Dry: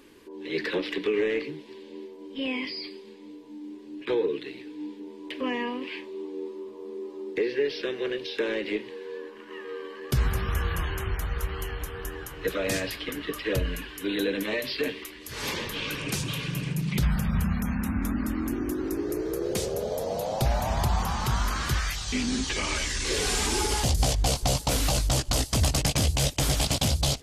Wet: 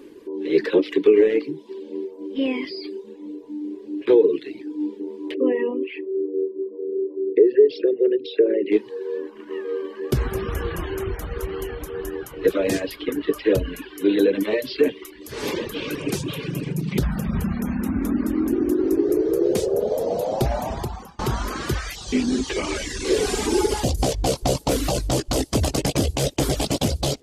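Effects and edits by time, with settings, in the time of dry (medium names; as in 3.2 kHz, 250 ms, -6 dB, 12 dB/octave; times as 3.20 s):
5.34–8.72 s: resonances exaggerated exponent 2
20.57–21.19 s: fade out, to -23 dB
whole clip: reverb removal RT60 0.74 s; peaking EQ 370 Hz +13.5 dB 1.6 oct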